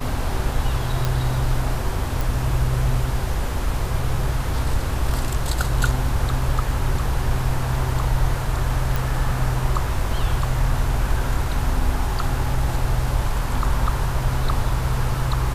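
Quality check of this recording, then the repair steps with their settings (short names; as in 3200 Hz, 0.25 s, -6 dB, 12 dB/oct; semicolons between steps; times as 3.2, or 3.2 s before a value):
1.05 pop
2.21 pop
8.96 pop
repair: de-click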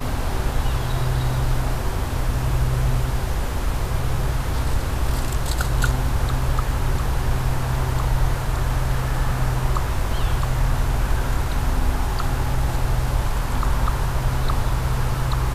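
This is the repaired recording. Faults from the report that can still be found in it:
none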